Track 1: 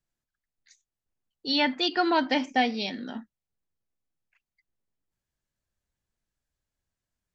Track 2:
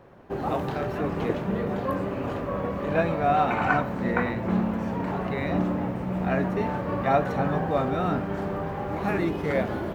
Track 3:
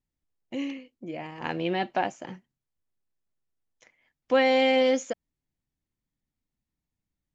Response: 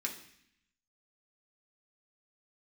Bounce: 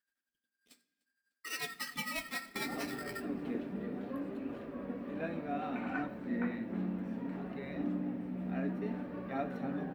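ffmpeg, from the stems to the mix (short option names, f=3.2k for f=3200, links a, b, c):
-filter_complex "[0:a]tremolo=f=11:d=0.71,acompressor=threshold=-44dB:ratio=2,aeval=exprs='val(0)*sgn(sin(2*PI*1600*n/s))':c=same,volume=0.5dB,asplit=3[a][b][c];[b]volume=-5.5dB[d];[c]volume=-22.5dB[e];[1:a]adelay=2250,volume=-13dB,asplit=2[f][g];[g]volume=-6.5dB[h];[3:a]atrim=start_sample=2205[i];[d][h]amix=inputs=2:normalize=0[j];[j][i]afir=irnorm=-1:irlink=0[k];[e]aecho=0:1:300|600|900|1200|1500|1800|2100:1|0.47|0.221|0.104|0.0488|0.0229|0.0108[l];[a][f][k][l]amix=inputs=4:normalize=0,equalizer=f=100:t=o:w=0.67:g=-6,equalizer=f=250:t=o:w=0.67:g=10,equalizer=f=1k:t=o:w=0.67:g=-6,equalizer=f=6.3k:t=o:w=0.67:g=-6,flanger=delay=1.8:depth=10:regen=-58:speed=0.65:shape=sinusoidal"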